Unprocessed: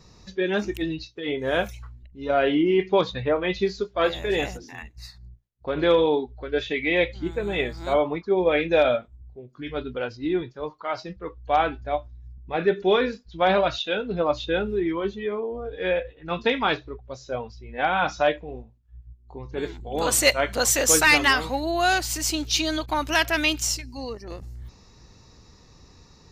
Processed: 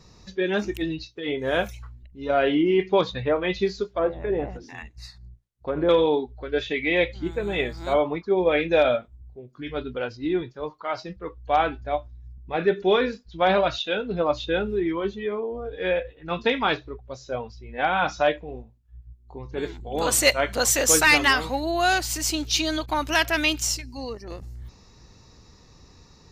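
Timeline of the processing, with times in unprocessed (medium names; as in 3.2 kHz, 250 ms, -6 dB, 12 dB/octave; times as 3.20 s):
3.93–5.89 s: low-pass that closes with the level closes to 860 Hz, closed at -21.5 dBFS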